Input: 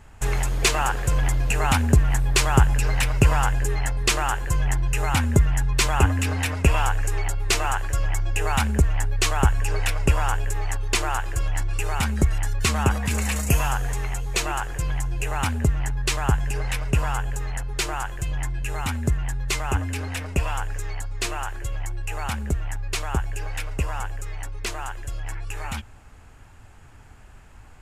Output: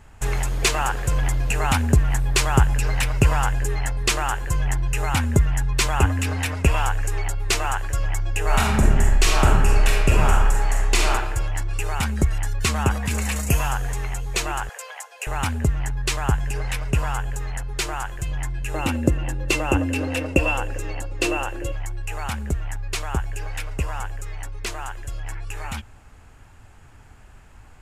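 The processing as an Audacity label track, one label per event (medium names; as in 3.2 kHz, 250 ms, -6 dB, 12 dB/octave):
8.440000	11.100000	reverb throw, RT60 1.2 s, DRR -2 dB
14.690000	15.270000	steep high-pass 470 Hz 72 dB/octave
18.740000	21.720000	small resonant body resonances 320/510/2700 Hz, height 18 dB, ringing for 50 ms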